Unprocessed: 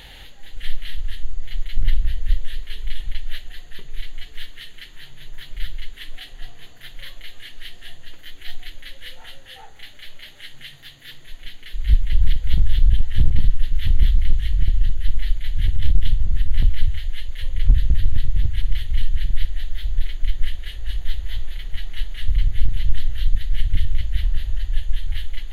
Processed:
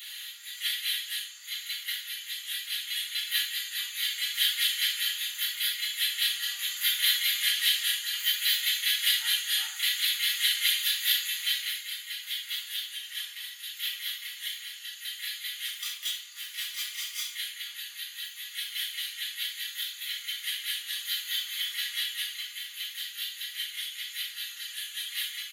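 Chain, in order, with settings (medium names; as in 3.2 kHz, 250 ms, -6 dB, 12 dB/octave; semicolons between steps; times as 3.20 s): 15.65–17.32 s: comb filter that takes the minimum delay 0.87 ms; level rider gain up to 12 dB; high-pass 1.3 kHz 24 dB/octave; differentiator; comb 4.2 ms, depth 67%; simulated room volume 900 m³, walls furnished, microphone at 6.7 m; trim +2 dB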